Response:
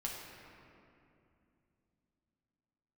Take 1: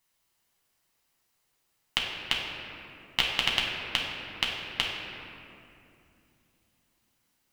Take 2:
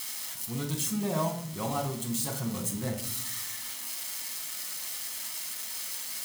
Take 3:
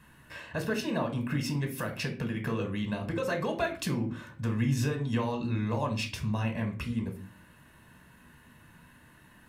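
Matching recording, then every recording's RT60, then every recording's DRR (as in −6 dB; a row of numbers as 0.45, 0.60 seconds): 1; 2.7, 0.65, 0.40 seconds; −3.5, 1.0, 4.0 decibels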